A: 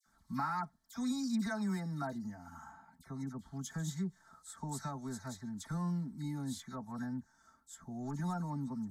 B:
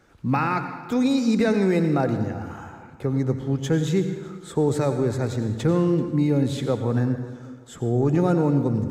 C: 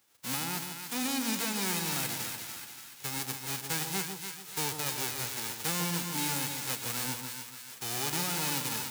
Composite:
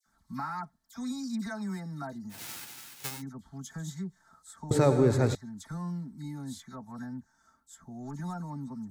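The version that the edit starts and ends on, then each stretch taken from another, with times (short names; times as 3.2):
A
2.37–3.15 from C, crossfade 0.16 s
4.71–5.35 from B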